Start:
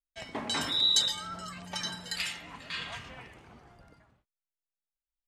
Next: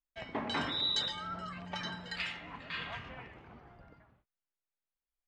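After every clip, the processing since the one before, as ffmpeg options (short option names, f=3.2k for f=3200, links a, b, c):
-af "lowpass=2.7k"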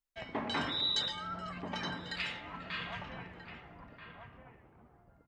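-filter_complex "[0:a]asplit=2[a][b];[b]adelay=1283,volume=-6dB,highshelf=f=4k:g=-28.9[c];[a][c]amix=inputs=2:normalize=0"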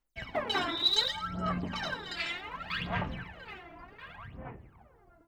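-af "aphaser=in_gain=1:out_gain=1:delay=3:decay=0.78:speed=0.67:type=sinusoidal"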